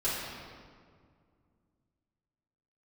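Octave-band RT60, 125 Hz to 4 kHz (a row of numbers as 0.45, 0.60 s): 3.1, 3.0, 2.2, 1.9, 1.5, 1.3 s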